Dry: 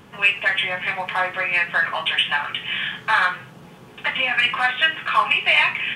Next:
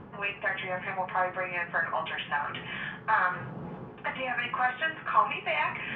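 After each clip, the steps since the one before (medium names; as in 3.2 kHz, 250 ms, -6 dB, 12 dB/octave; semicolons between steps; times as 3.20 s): low-pass 1.2 kHz 12 dB/octave; reverse; upward compressor, threshold -27 dBFS; reverse; trim -3 dB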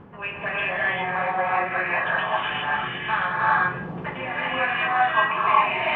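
gated-style reverb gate 430 ms rising, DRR -6 dB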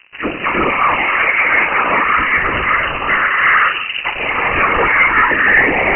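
whisper effect; waveshaping leveller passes 3; frequency inversion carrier 2.9 kHz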